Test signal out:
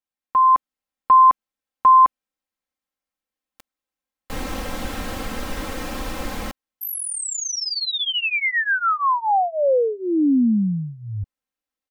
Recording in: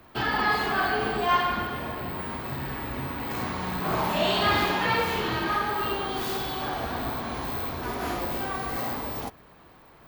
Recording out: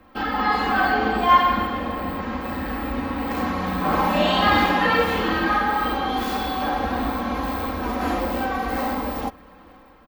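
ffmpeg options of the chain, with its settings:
ffmpeg -i in.wav -af "highshelf=frequency=3200:gain=-10,aecho=1:1:3.8:0.9,dynaudnorm=framelen=360:gausssize=3:maxgain=5dB" out.wav

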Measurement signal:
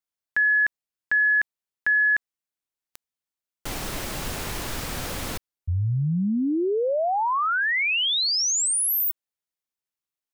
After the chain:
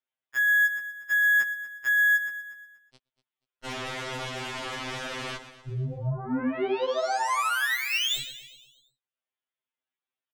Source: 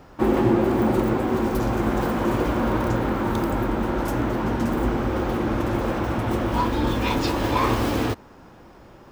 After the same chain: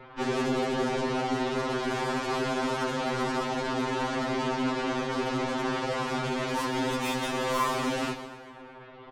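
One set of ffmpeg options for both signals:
ffmpeg -i in.wav -filter_complex "[0:a]highpass=frequency=320:poles=1,asplit=2[link_01][link_02];[link_02]acompressor=threshold=-30dB:ratio=12:attack=0.66:release=113:knee=6:detection=rms,volume=2dB[link_03];[link_01][link_03]amix=inputs=2:normalize=0,aresample=8000,aresample=44100,asoftclip=type=tanh:threshold=-18dB,aeval=exprs='0.126*(cos(1*acos(clip(val(0)/0.126,-1,1)))-cos(1*PI/2))+0.0355*(cos(2*acos(clip(val(0)/0.126,-1,1)))-cos(2*PI/2))+0.00501*(cos(4*acos(clip(val(0)/0.126,-1,1)))-cos(4*PI/2))+0.000891*(cos(6*acos(clip(val(0)/0.126,-1,1)))-cos(6*PI/2))+0.0282*(cos(8*acos(clip(val(0)/0.126,-1,1)))-cos(8*PI/2))':channel_layout=same,aecho=1:1:120|240|360|480|600|720:0.237|0.128|0.0691|0.0373|0.0202|0.0109,aeval=exprs='val(0)*sin(2*PI*27*n/s)':channel_layout=same,afftfilt=real='re*2.45*eq(mod(b,6),0)':imag='im*2.45*eq(mod(b,6),0)':win_size=2048:overlap=0.75" out.wav

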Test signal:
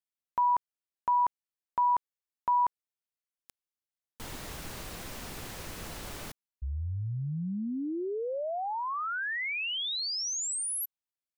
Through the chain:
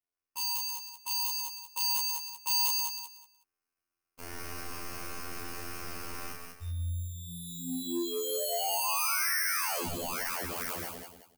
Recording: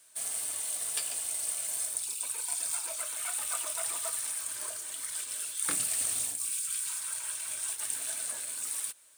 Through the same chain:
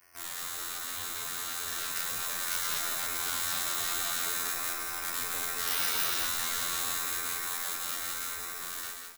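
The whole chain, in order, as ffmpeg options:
ffmpeg -i in.wav -filter_complex "[0:a]acrusher=samples=12:mix=1:aa=0.000001,afftfilt=real='hypot(re,im)*cos(PI*b)':imag='0':win_size=2048:overlap=0.75,aeval=exprs='0.0531*(abs(mod(val(0)/0.0531+3,4)-2)-1)':channel_layout=same,asplit=2[link_01][link_02];[link_02]aecho=0:1:32.07|134.1|201.2:0.891|0.398|0.447[link_03];[link_01][link_03]amix=inputs=2:normalize=0,asoftclip=type=tanh:threshold=-26dB,crystalizer=i=3:c=0,dynaudnorm=framelen=240:gausssize=17:maxgain=6dB,asplit=2[link_04][link_05];[link_05]aecho=0:1:185|370|555:0.398|0.0955|0.0229[link_06];[link_04][link_06]amix=inputs=2:normalize=0,volume=-6.5dB" out.wav

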